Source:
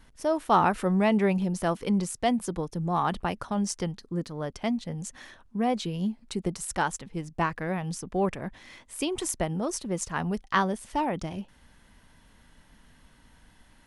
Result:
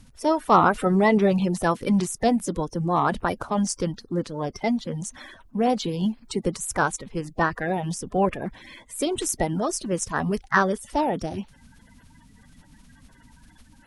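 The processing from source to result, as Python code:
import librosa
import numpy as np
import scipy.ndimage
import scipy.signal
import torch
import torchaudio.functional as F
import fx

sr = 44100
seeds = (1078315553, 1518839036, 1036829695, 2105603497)

y = fx.spec_quant(x, sr, step_db=30)
y = y * librosa.db_to_amplitude(5.0)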